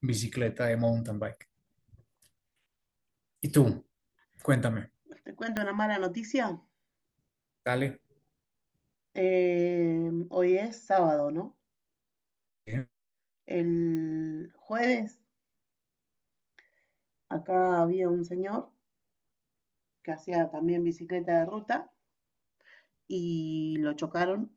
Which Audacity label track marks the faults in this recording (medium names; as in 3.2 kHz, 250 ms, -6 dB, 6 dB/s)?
5.570000	5.570000	pop -16 dBFS
13.950000	13.950000	pop -23 dBFS